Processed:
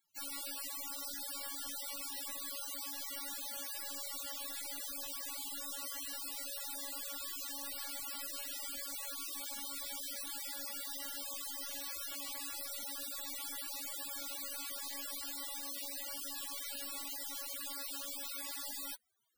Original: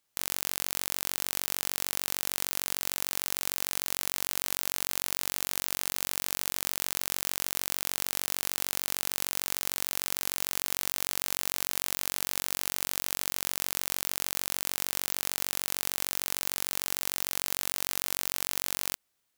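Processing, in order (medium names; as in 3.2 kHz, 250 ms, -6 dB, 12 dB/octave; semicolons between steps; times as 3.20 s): loudest bins only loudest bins 32; trim +7 dB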